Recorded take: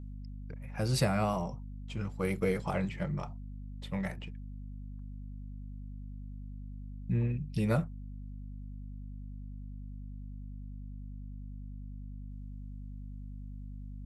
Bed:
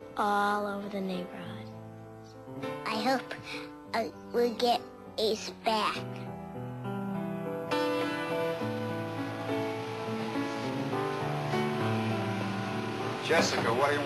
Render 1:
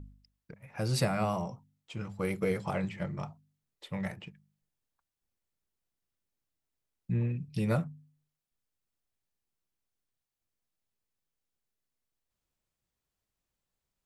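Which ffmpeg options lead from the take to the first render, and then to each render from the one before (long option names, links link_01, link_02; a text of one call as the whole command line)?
ffmpeg -i in.wav -af "bandreject=frequency=50:width_type=h:width=4,bandreject=frequency=100:width_type=h:width=4,bandreject=frequency=150:width_type=h:width=4,bandreject=frequency=200:width_type=h:width=4,bandreject=frequency=250:width_type=h:width=4" out.wav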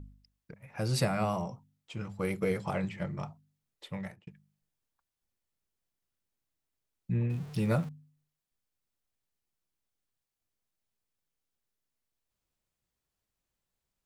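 ffmpeg -i in.wav -filter_complex "[0:a]asettb=1/sr,asplit=3[link_01][link_02][link_03];[link_01]atrim=end=7.304[link_04];[link_02]atrim=start=7.3:end=7.89,asetpts=PTS-STARTPTS,afade=type=in:duration=0.004:curve=qsin,afade=type=out:start_time=0.586:duration=0.004:curve=qsin,aeval=exprs='val(0)+0.5*0.00708*sgn(val(0))':channel_layout=same[link_05];[link_03]atrim=start=7.886[link_06];[link_04][link_05]acrossfade=duration=0.004:curve1=hsin:curve2=qsin[link_07];[link_07][link_06]acrossfade=duration=0.004:curve1=qsin:curve2=hsin,asplit=2[link_08][link_09];[link_08]atrim=end=4.27,asetpts=PTS-STARTPTS,afade=type=out:start_time=3.87:duration=0.4[link_10];[link_09]atrim=start=4.27,asetpts=PTS-STARTPTS,afade=type=in:duration=0.004:curve=hsin[link_11];[link_10][link_11]concat=n=2:v=0:a=1" out.wav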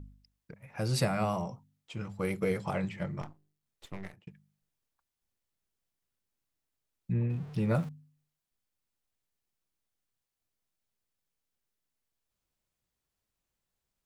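ffmpeg -i in.wav -filter_complex "[0:a]asettb=1/sr,asplit=3[link_01][link_02][link_03];[link_01]atrim=end=3.214[link_04];[link_02]atrim=start=3.21:end=4.14,asetpts=PTS-STARTPTS,afade=type=in:duration=0.004:curve=qsin,afade=type=out:start_time=0.926:duration=0.004:curve=qsin,aeval=exprs='max(val(0),0)':channel_layout=same[link_05];[link_03]atrim=start=4.136[link_06];[link_04][link_05]acrossfade=duration=0.004:curve1=hsin:curve2=qsin[link_07];[link_07][link_06]acrossfade=duration=0.004:curve1=qsin:curve2=hsin,asettb=1/sr,asplit=3[link_08][link_09][link_10];[link_08]atrim=end=7.134[link_11];[link_09]atrim=start=7.13:end=7.75,asetpts=PTS-STARTPTS,afade=type=in:duration=0.004:curve=qsin,afade=type=out:start_time=0.616:duration=0.004:curve=qsin,highshelf=frequency=3900:gain=-11.5[link_12];[link_10]atrim=start=7.746[link_13];[link_11][link_12]acrossfade=duration=0.004:curve1=hsin:curve2=qsin[link_14];[link_14][link_13]acrossfade=duration=0.004:curve1=qsin:curve2=hsin" out.wav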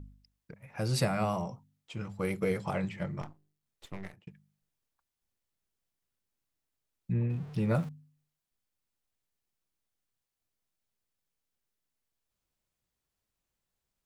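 ffmpeg -i in.wav -af anull out.wav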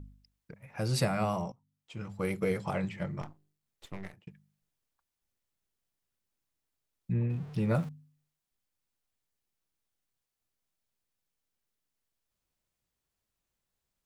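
ffmpeg -i in.wav -filter_complex "[0:a]asplit=2[link_01][link_02];[link_01]atrim=end=1.52,asetpts=PTS-STARTPTS,afade=type=out:start_time=1.516:duration=0.004:curve=hsin:silence=0.112202[link_03];[link_02]atrim=start=1.52,asetpts=PTS-STARTPTS,afade=type=in:duration=0.63:silence=0.112202[link_04];[link_03][link_04]concat=n=2:v=0:a=1" out.wav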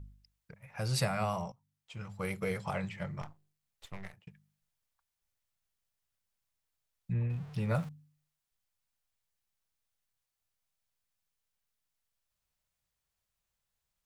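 ffmpeg -i in.wav -af "equalizer=frequency=300:width_type=o:width=1.2:gain=-10.5" out.wav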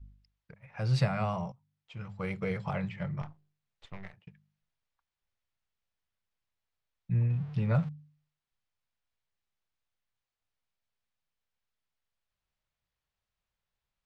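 ffmpeg -i in.wav -af "lowpass=4000,adynamicequalizer=threshold=0.00501:dfrequency=140:dqfactor=1.6:tfrequency=140:tqfactor=1.6:attack=5:release=100:ratio=0.375:range=3.5:mode=boostabove:tftype=bell" out.wav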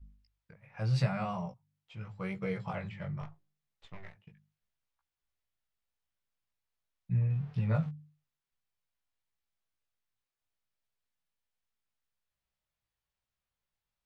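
ffmpeg -i in.wav -af "flanger=delay=15:depth=4.7:speed=0.82" out.wav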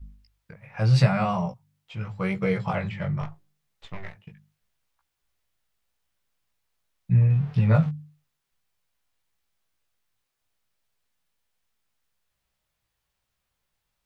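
ffmpeg -i in.wav -af "volume=10.5dB" out.wav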